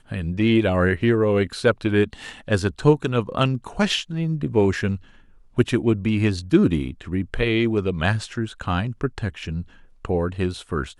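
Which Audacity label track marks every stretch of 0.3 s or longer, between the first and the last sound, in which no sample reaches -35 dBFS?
4.970000	5.580000	silence
9.630000	10.050000	silence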